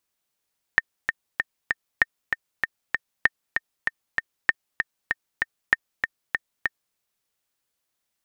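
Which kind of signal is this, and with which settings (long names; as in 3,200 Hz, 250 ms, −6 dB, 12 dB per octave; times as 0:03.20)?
click track 194 BPM, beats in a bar 4, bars 5, 1,820 Hz, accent 6 dB −3 dBFS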